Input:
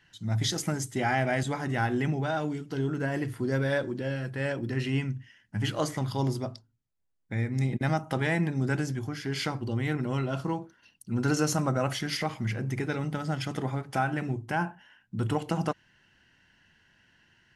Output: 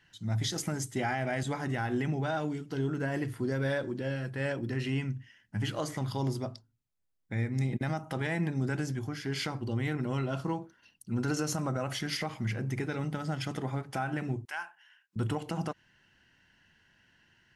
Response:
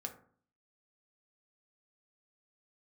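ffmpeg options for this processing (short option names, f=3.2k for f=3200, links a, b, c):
-filter_complex "[0:a]asettb=1/sr,asplit=3[a][b][c];[a]atrim=end=14.454[d];[b]atrim=start=14.45:end=15.16,asetpts=PTS-STARTPTS,afade=t=in:d=0.004:c=qsin,afade=t=out:st=0.706:d=0.004:c=qsin,highpass=1.4k[e];[c]atrim=start=15.156[f];[d][e]acrossfade=d=0.004:c1=hsin:c2=qsin[g];[g][f]acrossfade=d=0.004:c1=qsin:c2=hsin,alimiter=limit=-19.5dB:level=0:latency=1:release=97,volume=-2dB"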